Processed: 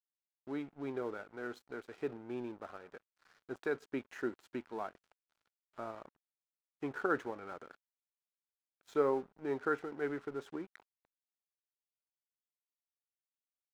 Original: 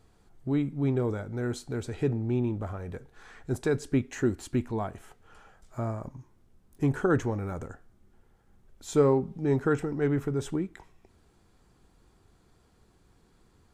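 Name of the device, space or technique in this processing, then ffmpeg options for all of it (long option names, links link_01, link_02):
pocket radio on a weak battery: -af "highpass=370,lowpass=3700,aeval=exprs='sgn(val(0))*max(abs(val(0))-0.00316,0)':channel_layout=same,equalizer=frequency=1400:width_type=o:width=0.42:gain=5,volume=-6dB"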